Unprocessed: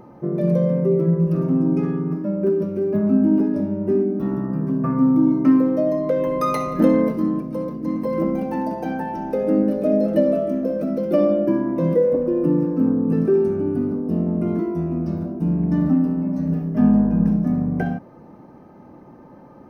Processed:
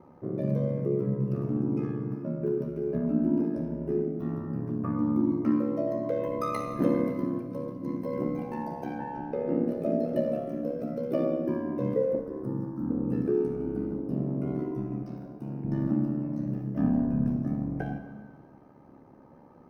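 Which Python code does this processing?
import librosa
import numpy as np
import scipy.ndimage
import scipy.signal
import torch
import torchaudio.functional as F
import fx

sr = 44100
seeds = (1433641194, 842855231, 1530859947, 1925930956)

y = fx.fixed_phaser(x, sr, hz=1100.0, stages=4, at=(12.19, 12.9))
y = fx.highpass(y, sr, hz=390.0, slope=6, at=(15.03, 15.65))
y = y * np.sin(2.0 * np.pi * 35.0 * np.arange(len(y)) / sr)
y = fx.lowpass(y, sr, hz=3400.0, slope=12, at=(8.98, 9.63))
y = fx.rev_plate(y, sr, seeds[0], rt60_s=1.7, hf_ratio=0.9, predelay_ms=0, drr_db=7.5)
y = F.gain(torch.from_numpy(y), -7.0).numpy()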